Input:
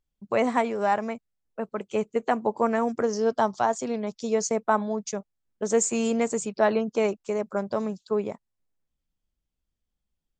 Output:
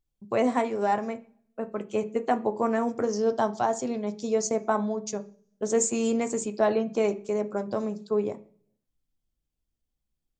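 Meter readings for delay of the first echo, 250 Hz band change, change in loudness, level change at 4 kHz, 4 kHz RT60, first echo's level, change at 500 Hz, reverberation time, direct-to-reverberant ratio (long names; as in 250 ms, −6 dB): no echo audible, −0.5 dB, −1.0 dB, −2.0 dB, 0.60 s, no echo audible, −1.0 dB, 0.45 s, 7.5 dB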